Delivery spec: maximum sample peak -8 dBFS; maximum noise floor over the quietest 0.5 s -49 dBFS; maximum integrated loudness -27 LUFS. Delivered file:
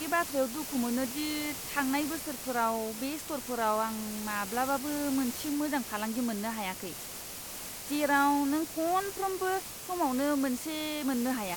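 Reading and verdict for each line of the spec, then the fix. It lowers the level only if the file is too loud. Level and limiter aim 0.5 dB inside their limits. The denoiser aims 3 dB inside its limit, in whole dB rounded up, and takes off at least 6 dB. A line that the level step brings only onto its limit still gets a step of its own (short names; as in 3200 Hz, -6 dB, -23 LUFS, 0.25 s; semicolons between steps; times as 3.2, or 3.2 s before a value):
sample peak -14.0 dBFS: OK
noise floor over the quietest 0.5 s -42 dBFS: fail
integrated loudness -31.5 LUFS: OK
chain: denoiser 10 dB, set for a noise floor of -42 dBFS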